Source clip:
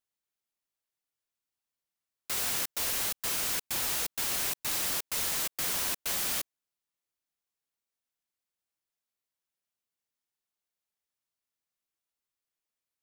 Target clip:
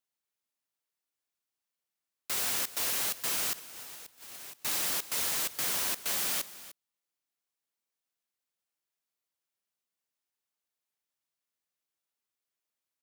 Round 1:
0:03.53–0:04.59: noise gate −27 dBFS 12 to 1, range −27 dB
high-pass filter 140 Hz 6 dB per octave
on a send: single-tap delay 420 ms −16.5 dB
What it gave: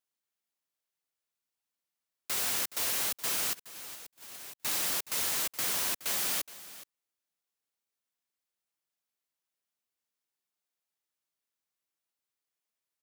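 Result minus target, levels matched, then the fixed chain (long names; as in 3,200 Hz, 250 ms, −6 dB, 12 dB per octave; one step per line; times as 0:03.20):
echo 119 ms late
0:03.53–0:04.59: noise gate −27 dBFS 12 to 1, range −27 dB
high-pass filter 140 Hz 6 dB per octave
on a send: single-tap delay 301 ms −16.5 dB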